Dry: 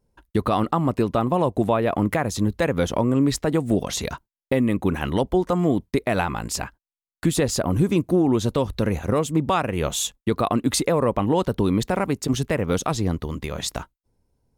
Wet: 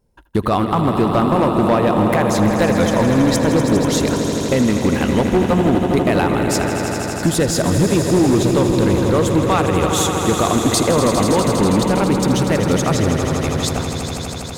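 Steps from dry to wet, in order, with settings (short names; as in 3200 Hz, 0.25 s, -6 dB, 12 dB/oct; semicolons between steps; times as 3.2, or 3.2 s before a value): swelling echo 81 ms, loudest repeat 5, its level -10 dB; hard clip -13 dBFS, distortion -17 dB; gain +4.5 dB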